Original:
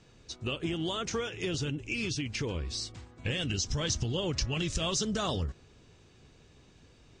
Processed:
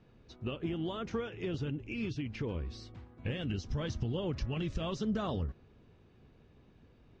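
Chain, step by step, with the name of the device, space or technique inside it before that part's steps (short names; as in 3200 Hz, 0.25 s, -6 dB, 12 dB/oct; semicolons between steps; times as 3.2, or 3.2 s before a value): phone in a pocket (LPF 4000 Hz 12 dB/oct; bell 220 Hz +4 dB 0.33 oct; high shelf 2300 Hz -11 dB); gain -2.5 dB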